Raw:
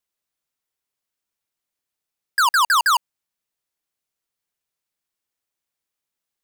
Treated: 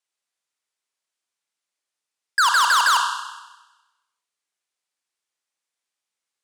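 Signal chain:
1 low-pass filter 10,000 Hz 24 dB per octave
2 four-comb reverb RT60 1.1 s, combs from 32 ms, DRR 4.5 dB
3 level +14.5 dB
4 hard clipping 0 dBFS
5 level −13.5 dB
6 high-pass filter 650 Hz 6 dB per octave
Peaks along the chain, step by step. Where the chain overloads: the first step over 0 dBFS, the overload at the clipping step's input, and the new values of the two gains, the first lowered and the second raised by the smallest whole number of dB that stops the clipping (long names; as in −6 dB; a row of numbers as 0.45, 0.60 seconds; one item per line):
−13.0, −6.0, +8.5, 0.0, −13.5, −9.5 dBFS
step 3, 8.5 dB
step 3 +5.5 dB, step 5 −4.5 dB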